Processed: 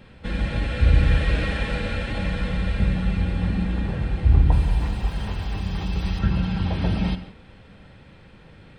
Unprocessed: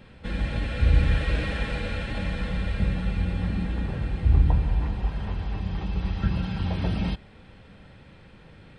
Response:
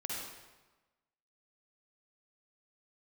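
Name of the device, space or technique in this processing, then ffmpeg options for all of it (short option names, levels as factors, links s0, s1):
keyed gated reverb: -filter_complex "[0:a]asettb=1/sr,asplit=3[s0][s1][s2];[s0]atrim=end=4.524[s3];[s1]atrim=start=4.52:end=6.19,asetpts=PTS-STARTPTS,afade=t=in:d=0.004:c=qsin,afade=t=out:st=1.666:d=0.004:c=qsin,aemphasis=mode=production:type=75fm[s4];[s2]atrim=start=6.186[s5];[s3][s4]acrossfade=d=0.004:c1=hsin:c2=qsin[s6];[s6][s5]acrossfade=d=0.004:c1=qsin:c2=hsin,asplit=3[s7][s8][s9];[1:a]atrim=start_sample=2205[s10];[s8][s10]afir=irnorm=-1:irlink=0[s11];[s9]apad=whole_len=387458[s12];[s11][s12]sidechaingate=range=0.0224:threshold=0.00562:ratio=16:detection=peak,volume=0.299[s13];[s7][s13]amix=inputs=2:normalize=0,volume=1.19"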